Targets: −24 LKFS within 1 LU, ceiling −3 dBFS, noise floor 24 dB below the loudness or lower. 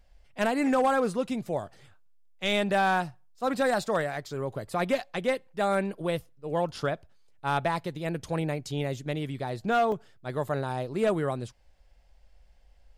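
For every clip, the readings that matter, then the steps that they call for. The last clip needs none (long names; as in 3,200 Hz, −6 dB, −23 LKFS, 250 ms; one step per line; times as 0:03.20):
share of clipped samples 0.5%; peaks flattened at −18.0 dBFS; number of dropouts 1; longest dropout 2.2 ms; integrated loudness −29.5 LKFS; sample peak −18.0 dBFS; target loudness −24.0 LKFS
→ clipped peaks rebuilt −18 dBFS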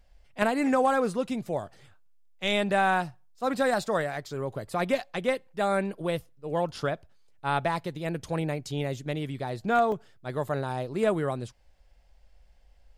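share of clipped samples 0.0%; number of dropouts 1; longest dropout 2.2 ms
→ repair the gap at 0:09.92, 2.2 ms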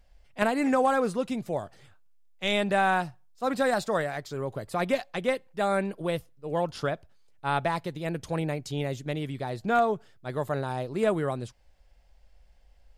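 number of dropouts 0; integrated loudness −29.0 LKFS; sample peak −9.0 dBFS; target loudness −24.0 LKFS
→ level +5 dB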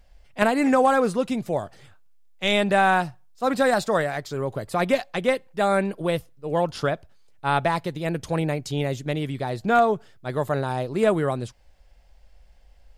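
integrated loudness −24.0 LKFS; sample peak −4.0 dBFS; background noise floor −54 dBFS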